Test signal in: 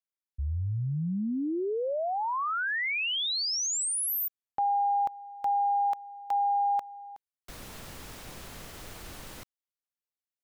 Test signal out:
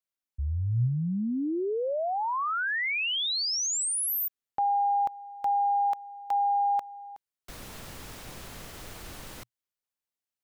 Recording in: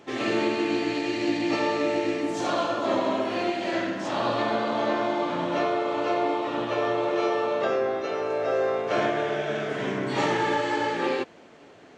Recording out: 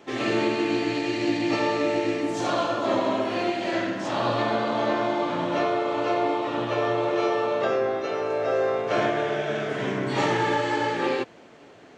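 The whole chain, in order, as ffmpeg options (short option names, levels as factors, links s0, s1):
-af "adynamicequalizer=threshold=0.00158:dfrequency=120:dqfactor=5.8:tfrequency=120:tqfactor=5.8:attack=5:release=100:ratio=0.375:range=3:mode=boostabove:tftype=bell,volume=1.12"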